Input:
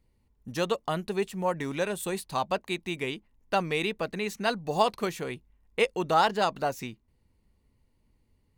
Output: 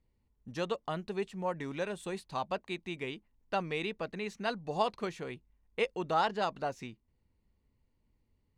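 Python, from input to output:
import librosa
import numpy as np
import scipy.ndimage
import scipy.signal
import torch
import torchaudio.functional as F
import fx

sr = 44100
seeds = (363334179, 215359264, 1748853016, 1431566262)

y = fx.air_absorb(x, sr, metres=66.0)
y = y * 10.0 ** (-6.0 / 20.0)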